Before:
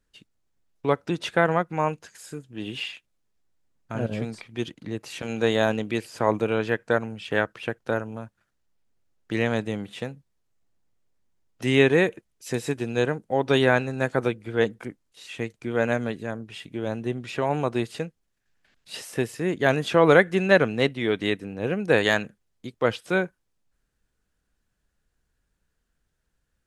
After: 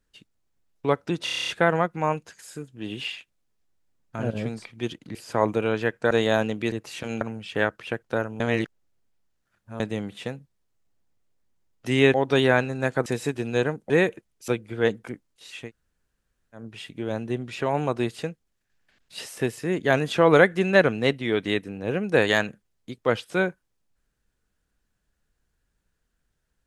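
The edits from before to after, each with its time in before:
1.24 stutter 0.03 s, 9 plays
4.91–5.4 swap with 6.01–6.97
8.16–9.56 reverse
11.9–12.48 swap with 13.32–14.24
15.4–16.36 room tone, crossfade 0.16 s

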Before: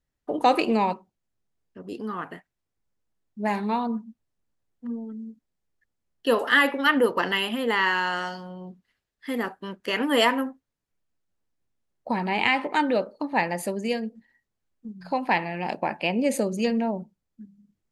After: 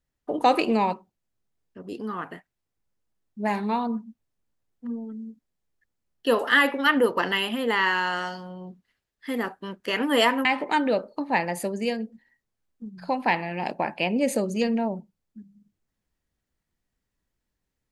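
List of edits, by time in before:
10.45–12.48 cut

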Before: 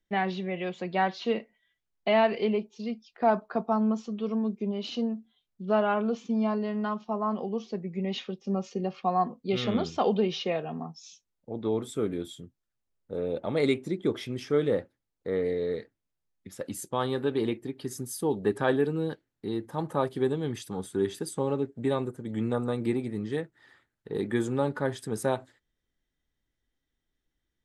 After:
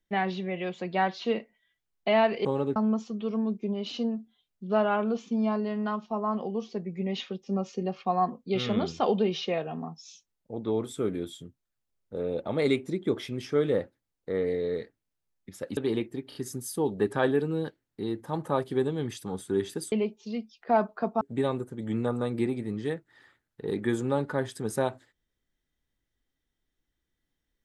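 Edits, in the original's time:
2.45–3.74 swap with 21.37–21.68
16.75–17.28 cut
17.8 stutter 0.03 s, 3 plays

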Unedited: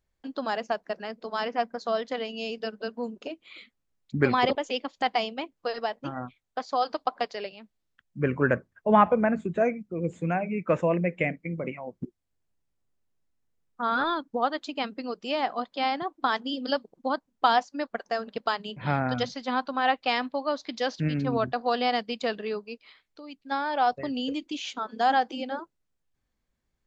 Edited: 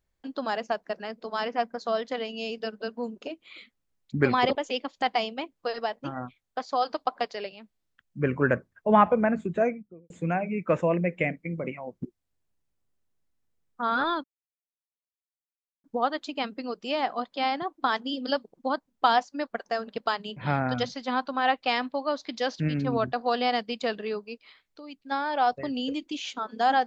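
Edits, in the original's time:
9.58–10.1 studio fade out
14.24 insert silence 1.60 s

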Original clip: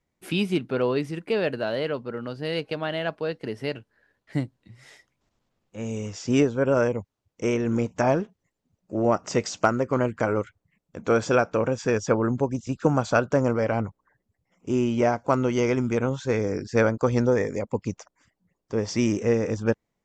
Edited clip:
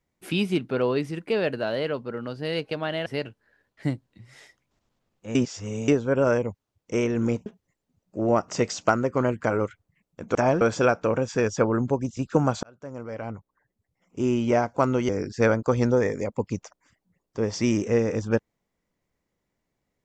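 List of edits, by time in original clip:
3.06–3.56 cut
5.85–6.38 reverse
7.96–8.22 move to 11.11
13.13–14.84 fade in
15.59–16.44 cut

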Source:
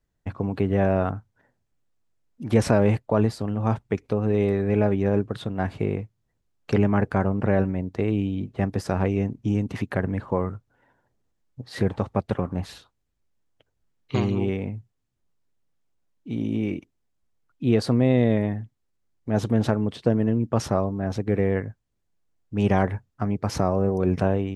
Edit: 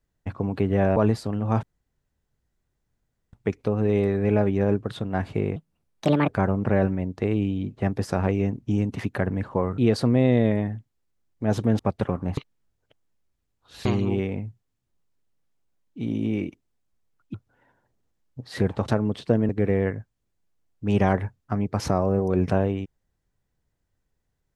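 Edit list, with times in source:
0.96–3.11 cut
3.78 insert room tone 1.70 s
6.01–7.05 speed 144%
10.55–12.09 swap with 17.64–19.65
12.67–14.15 reverse
20.26–21.19 cut

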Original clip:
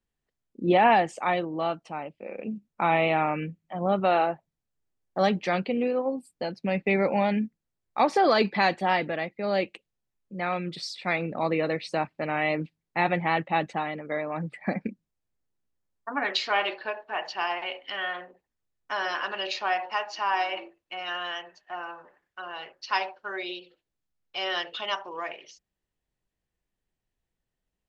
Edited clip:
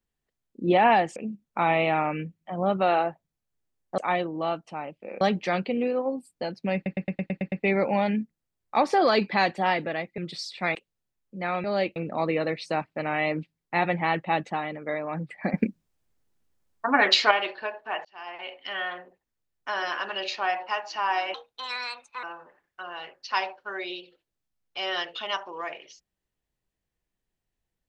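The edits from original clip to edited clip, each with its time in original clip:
1.16–2.39 move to 5.21
6.75 stutter 0.11 s, 8 plays
9.41–9.73 swap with 10.62–11.19
14.77–16.54 gain +8 dB
17.28–17.95 fade in
20.57–21.82 speed 140%

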